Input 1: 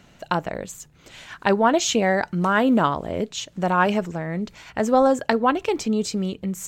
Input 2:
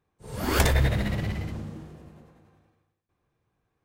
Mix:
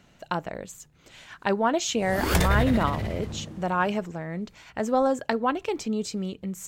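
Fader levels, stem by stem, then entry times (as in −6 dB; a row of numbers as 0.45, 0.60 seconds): −5.5, −1.0 decibels; 0.00, 1.75 seconds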